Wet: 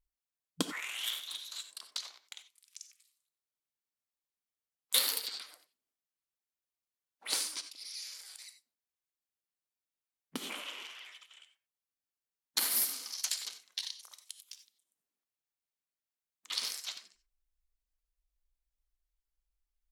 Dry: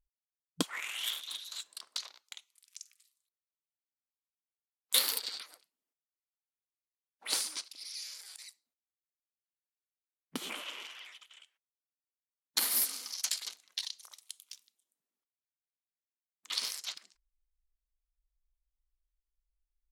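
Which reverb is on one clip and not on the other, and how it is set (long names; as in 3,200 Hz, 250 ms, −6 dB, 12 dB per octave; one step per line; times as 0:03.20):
reverb whose tail is shaped and stops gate 110 ms rising, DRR 10 dB
level −1 dB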